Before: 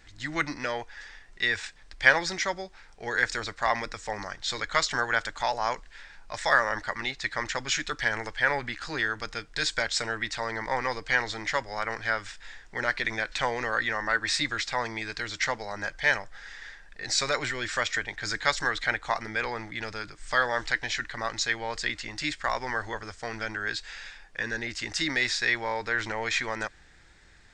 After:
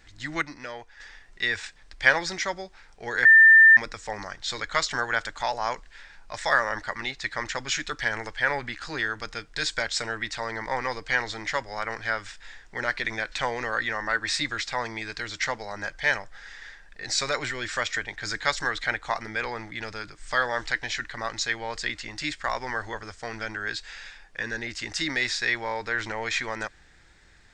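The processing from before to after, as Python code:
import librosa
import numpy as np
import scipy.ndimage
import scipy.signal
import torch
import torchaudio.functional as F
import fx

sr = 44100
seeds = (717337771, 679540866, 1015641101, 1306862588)

y = fx.edit(x, sr, fx.clip_gain(start_s=0.42, length_s=0.58, db=-6.5),
    fx.bleep(start_s=3.25, length_s=0.52, hz=1790.0, db=-9.5), tone=tone)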